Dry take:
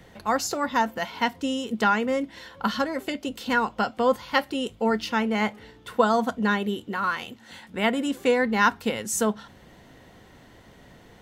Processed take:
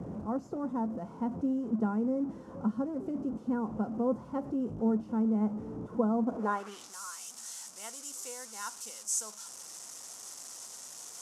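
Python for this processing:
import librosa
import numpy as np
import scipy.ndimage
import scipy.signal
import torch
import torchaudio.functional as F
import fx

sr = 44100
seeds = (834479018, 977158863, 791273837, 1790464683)

y = fx.delta_mod(x, sr, bps=64000, step_db=-26.5)
y = fx.band_shelf(y, sr, hz=2700.0, db=-13.0, octaves=1.7)
y = fx.filter_sweep_bandpass(y, sr, from_hz=210.0, to_hz=6700.0, start_s=6.23, end_s=6.93, q=1.2)
y = y * 10.0 ** (-1.0 / 20.0)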